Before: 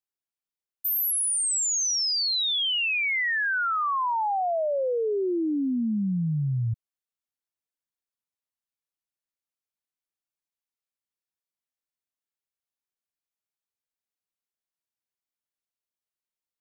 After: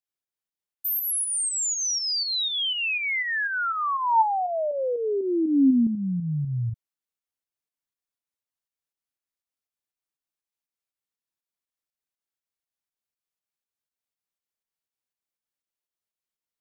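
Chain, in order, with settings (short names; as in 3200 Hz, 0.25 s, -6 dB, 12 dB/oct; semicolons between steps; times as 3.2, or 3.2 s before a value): pump 121 bpm, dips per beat 2, -6 dB, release 0.195 s; 3.67–5.87 small resonant body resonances 260/890 Hz, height 10 dB, ringing for 45 ms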